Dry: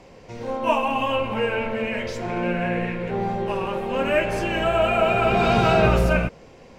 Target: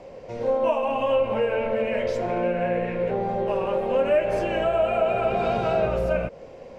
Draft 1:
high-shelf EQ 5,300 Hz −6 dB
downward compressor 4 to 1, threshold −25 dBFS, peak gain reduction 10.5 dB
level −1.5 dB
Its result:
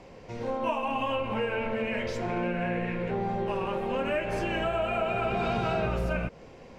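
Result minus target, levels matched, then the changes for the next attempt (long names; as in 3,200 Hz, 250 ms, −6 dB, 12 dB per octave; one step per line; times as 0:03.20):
500 Hz band −2.5 dB
add after downward compressor: parametric band 560 Hz +11.5 dB 0.7 octaves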